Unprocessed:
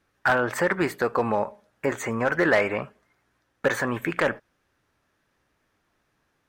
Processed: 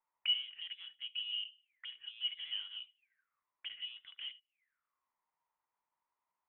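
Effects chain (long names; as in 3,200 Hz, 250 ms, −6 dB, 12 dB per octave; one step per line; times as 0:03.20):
tube saturation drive 21 dB, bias 0.55
envelope filter 770–2,800 Hz, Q 21, down, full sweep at −33 dBFS
voice inversion scrambler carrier 3,700 Hz
level +4 dB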